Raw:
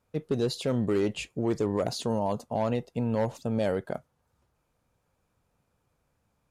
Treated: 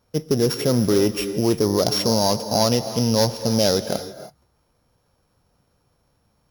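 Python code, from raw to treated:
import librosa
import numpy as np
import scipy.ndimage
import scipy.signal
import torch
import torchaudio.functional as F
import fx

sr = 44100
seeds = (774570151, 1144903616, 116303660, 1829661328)

y = np.r_[np.sort(x[:len(x) // 8 * 8].reshape(-1, 8), axis=1).ravel(), x[len(x) // 8 * 8:]]
y = fx.peak_eq(y, sr, hz=4700.0, db=7.0, octaves=1.4, at=(1.82, 3.86))
y = fx.rev_gated(y, sr, seeds[0], gate_ms=350, shape='rising', drr_db=10.5)
y = y * 10.0 ** (8.0 / 20.0)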